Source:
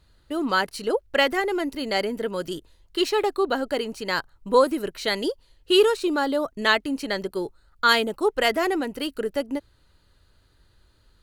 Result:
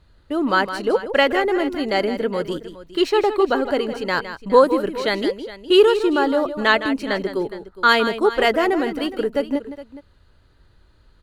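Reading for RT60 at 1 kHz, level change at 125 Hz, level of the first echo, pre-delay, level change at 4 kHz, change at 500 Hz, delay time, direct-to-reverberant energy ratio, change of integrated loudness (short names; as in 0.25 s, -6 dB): none, n/a, -11.0 dB, none, +1.0 dB, +5.5 dB, 0.161 s, none, +4.5 dB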